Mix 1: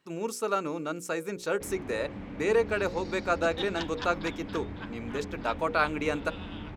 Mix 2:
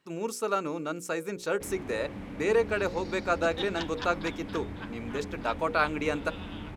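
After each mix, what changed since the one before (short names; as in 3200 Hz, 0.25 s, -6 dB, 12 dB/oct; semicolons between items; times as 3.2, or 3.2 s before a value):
first sound: remove air absorption 97 m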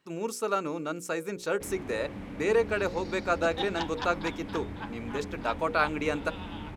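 second sound: add bell 840 Hz +12 dB 0.38 oct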